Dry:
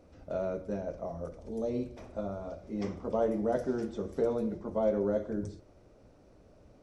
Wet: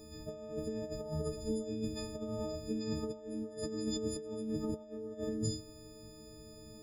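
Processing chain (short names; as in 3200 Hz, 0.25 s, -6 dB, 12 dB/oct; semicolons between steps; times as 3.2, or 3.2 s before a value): frequency quantiser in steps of 6 st; negative-ratio compressor -38 dBFS, ratio -1; band shelf 1300 Hz -10.5 dB 2.5 oct; gain +1 dB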